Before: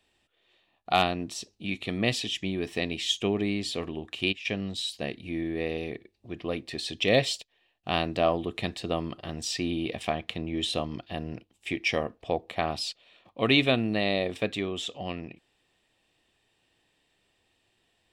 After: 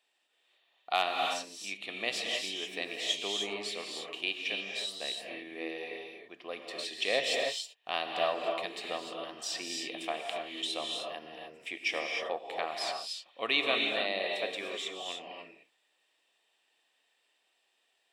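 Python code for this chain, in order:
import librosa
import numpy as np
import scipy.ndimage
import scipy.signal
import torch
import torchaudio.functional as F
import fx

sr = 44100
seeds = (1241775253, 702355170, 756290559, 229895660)

y = scipy.signal.sosfilt(scipy.signal.butter(2, 590.0, 'highpass', fs=sr, output='sos'), x)
y = fx.rev_gated(y, sr, seeds[0], gate_ms=330, shape='rising', drr_db=1.0)
y = y * 10.0 ** (-4.5 / 20.0)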